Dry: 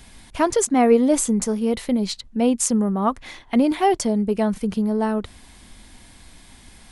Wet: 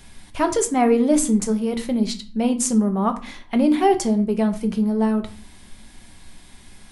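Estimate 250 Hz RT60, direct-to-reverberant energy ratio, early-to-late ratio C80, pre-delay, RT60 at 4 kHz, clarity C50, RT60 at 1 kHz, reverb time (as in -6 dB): 0.60 s, 6.0 dB, 19.0 dB, 5 ms, 0.30 s, 14.5 dB, 0.40 s, 0.45 s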